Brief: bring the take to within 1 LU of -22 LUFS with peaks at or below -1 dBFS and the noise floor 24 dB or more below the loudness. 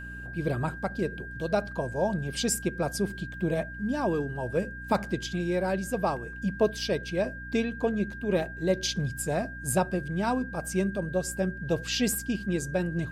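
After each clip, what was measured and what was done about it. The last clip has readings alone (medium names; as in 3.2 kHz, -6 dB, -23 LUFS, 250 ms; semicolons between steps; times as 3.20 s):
hum 60 Hz; highest harmonic 300 Hz; hum level -41 dBFS; steady tone 1.6 kHz; tone level -40 dBFS; loudness -29.5 LUFS; peak level -12.5 dBFS; loudness target -22.0 LUFS
-> hum notches 60/120/180/240/300 Hz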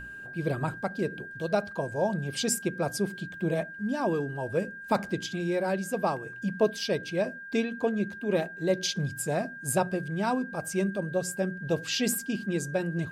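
hum not found; steady tone 1.6 kHz; tone level -40 dBFS
-> band-stop 1.6 kHz, Q 30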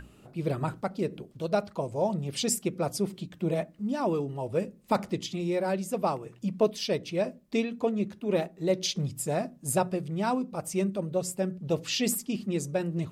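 steady tone not found; loudness -30.5 LUFS; peak level -13.0 dBFS; loudness target -22.0 LUFS
-> trim +8.5 dB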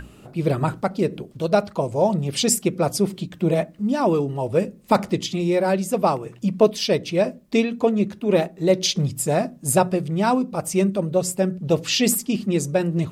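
loudness -22.0 LUFS; peak level -4.5 dBFS; noise floor -47 dBFS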